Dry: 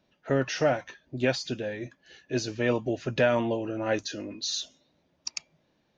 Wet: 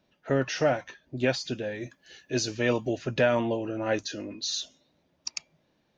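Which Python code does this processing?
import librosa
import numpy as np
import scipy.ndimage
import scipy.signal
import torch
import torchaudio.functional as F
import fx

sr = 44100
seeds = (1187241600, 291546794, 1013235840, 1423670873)

y = fx.high_shelf(x, sr, hz=fx.line((1.74, 5300.0), (2.97, 3400.0)), db=8.5, at=(1.74, 2.97), fade=0.02)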